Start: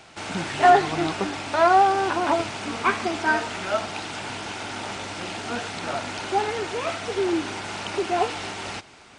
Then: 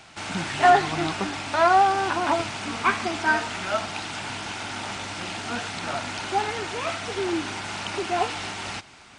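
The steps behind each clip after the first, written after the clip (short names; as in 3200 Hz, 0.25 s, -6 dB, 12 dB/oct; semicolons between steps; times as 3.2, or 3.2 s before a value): bell 450 Hz -6 dB 1.1 oct; gain +1 dB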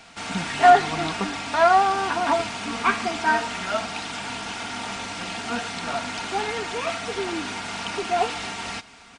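comb 4.3 ms, depth 50%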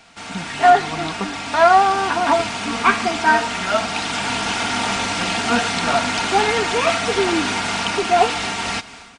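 AGC gain up to 11.5 dB; gain -1 dB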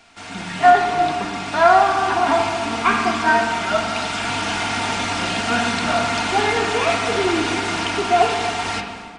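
reverb RT60 1.9 s, pre-delay 3 ms, DRR 1.5 dB; gain -3 dB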